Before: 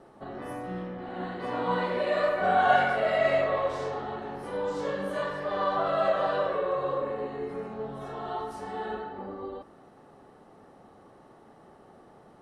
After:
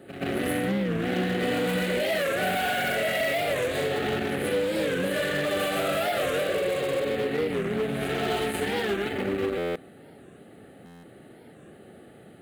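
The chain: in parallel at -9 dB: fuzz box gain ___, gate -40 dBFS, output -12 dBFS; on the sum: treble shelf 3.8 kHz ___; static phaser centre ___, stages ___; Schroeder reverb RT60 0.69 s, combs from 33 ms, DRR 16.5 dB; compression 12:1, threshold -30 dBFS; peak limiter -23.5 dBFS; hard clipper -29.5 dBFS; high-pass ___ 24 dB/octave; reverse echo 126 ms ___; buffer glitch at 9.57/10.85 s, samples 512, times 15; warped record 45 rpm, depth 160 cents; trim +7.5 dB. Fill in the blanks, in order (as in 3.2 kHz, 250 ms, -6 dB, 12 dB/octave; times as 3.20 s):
32 dB, +9 dB, 2.4 kHz, 4, 60 Hz, -10.5 dB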